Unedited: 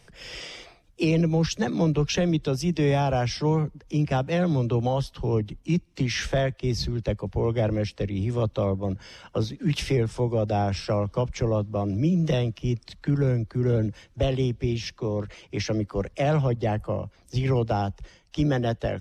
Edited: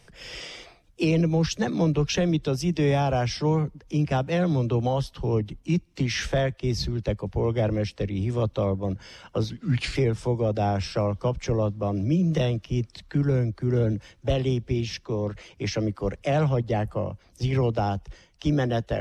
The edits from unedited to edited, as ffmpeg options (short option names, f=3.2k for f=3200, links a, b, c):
-filter_complex "[0:a]asplit=3[a][b][c];[a]atrim=end=9.504[d];[b]atrim=start=9.5:end=9.88,asetpts=PTS-STARTPTS,asetrate=37044,aresample=44100[e];[c]atrim=start=9.876[f];[d][e]acrossfade=d=0.004:c1=hsin:c2=hsin[g];[g][f]acrossfade=d=0.004:c1=hsin:c2=hsin"